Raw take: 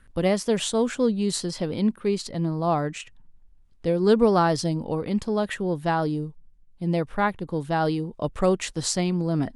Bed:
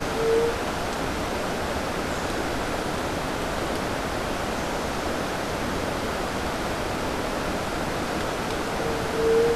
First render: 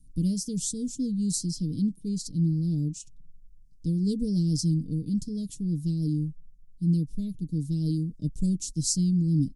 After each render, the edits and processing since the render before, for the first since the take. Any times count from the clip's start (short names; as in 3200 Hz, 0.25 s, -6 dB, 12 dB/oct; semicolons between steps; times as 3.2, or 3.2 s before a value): elliptic band-stop 250–5400 Hz, stop band 70 dB; comb 6.6 ms, depth 62%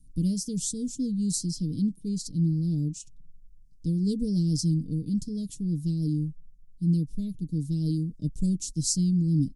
nothing audible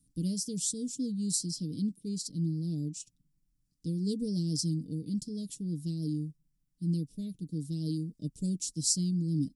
HPF 330 Hz 6 dB/oct; notch 6400 Hz, Q 17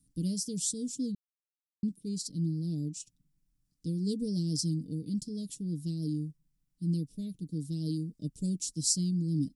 1.15–1.83 mute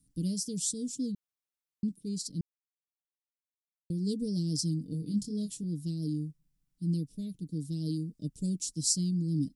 2.41–3.9 mute; 4.9–5.64 doubler 24 ms -4.5 dB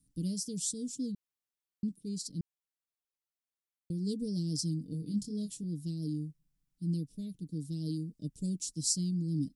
gain -2.5 dB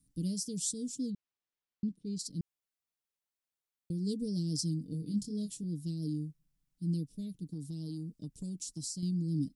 1.1–2.19 LPF 4700 Hz; 7.53–9.03 compressor, threshold -36 dBFS